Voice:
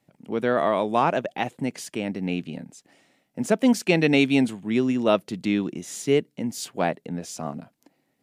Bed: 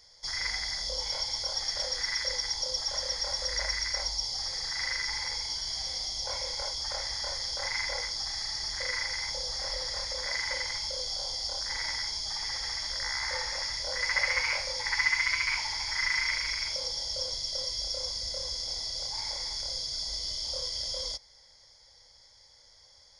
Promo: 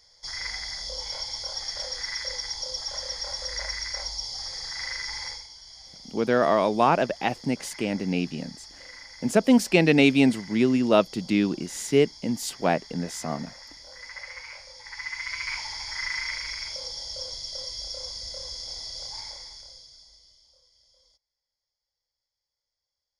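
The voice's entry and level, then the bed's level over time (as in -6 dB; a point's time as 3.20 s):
5.85 s, +1.0 dB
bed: 5.29 s -1 dB
5.50 s -12.5 dB
14.80 s -12.5 dB
15.51 s -2 dB
19.16 s -2 dB
20.62 s -29 dB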